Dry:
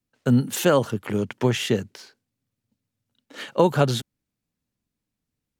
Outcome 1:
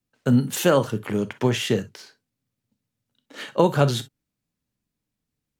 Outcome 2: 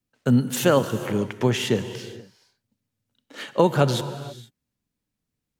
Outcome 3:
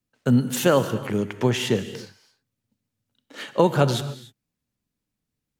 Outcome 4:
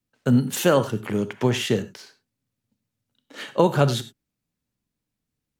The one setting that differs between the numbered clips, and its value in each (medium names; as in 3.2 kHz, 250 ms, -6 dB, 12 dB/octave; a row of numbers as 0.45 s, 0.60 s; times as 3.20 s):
gated-style reverb, gate: 80 ms, 500 ms, 320 ms, 120 ms